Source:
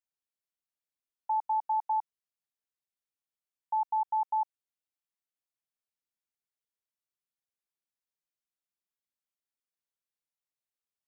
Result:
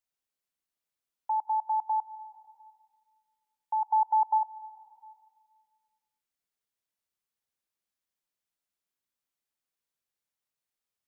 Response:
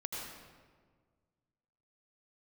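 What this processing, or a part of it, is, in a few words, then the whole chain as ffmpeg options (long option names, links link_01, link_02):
ducked reverb: -filter_complex "[0:a]asplit=3[link_01][link_02][link_03];[link_01]afade=type=out:start_time=3.88:duration=0.02[link_04];[link_02]equalizer=frequency=650:width=0.49:gain=5,afade=type=in:start_time=3.88:duration=0.02,afade=type=out:start_time=4.37:duration=0.02[link_05];[link_03]afade=type=in:start_time=4.37:duration=0.02[link_06];[link_04][link_05][link_06]amix=inputs=3:normalize=0,asplit=3[link_07][link_08][link_09];[1:a]atrim=start_sample=2205[link_10];[link_08][link_10]afir=irnorm=-1:irlink=0[link_11];[link_09]apad=whole_len=488403[link_12];[link_11][link_12]sidechaincompress=threshold=-42dB:ratio=12:attack=16:release=430,volume=-4.5dB[link_13];[link_07][link_13]amix=inputs=2:normalize=0"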